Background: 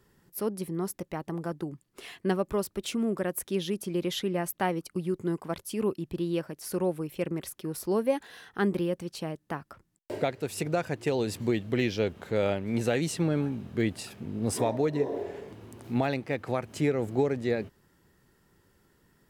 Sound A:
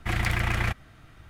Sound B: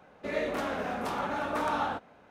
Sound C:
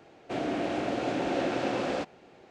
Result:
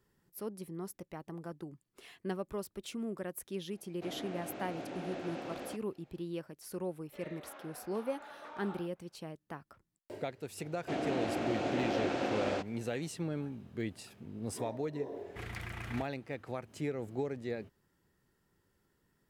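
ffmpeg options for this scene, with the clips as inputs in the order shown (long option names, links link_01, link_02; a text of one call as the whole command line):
ffmpeg -i bed.wav -i cue0.wav -i cue1.wav -i cue2.wav -filter_complex "[3:a]asplit=2[link_01][link_02];[0:a]volume=-10dB[link_03];[2:a]highpass=410,lowpass=5000[link_04];[1:a]highpass=60[link_05];[link_01]atrim=end=2.5,asetpts=PTS-STARTPTS,volume=-13dB,afade=type=in:duration=0.004:curve=hsin,afade=type=out:start_time=2.496:duration=0.004:curve=hsin,adelay=3720[link_06];[link_04]atrim=end=2.3,asetpts=PTS-STARTPTS,volume=-17.5dB,afade=type=in:duration=0.004:curve=hsin,afade=type=out:start_time=2.296:duration=0.004:curve=hsin,adelay=6890[link_07];[link_02]atrim=end=2.5,asetpts=PTS-STARTPTS,volume=-4dB,afade=type=in:duration=0.004:curve=hsin,afade=type=out:start_time=2.496:duration=0.004:curve=hsin,adelay=466578S[link_08];[link_05]atrim=end=1.29,asetpts=PTS-STARTPTS,volume=-16dB,afade=type=in:duration=0.004:curve=hsin,afade=type=out:start_time=1.286:duration=0.004:curve=hsin,adelay=15300[link_09];[link_03][link_06][link_07][link_08][link_09]amix=inputs=5:normalize=0" out.wav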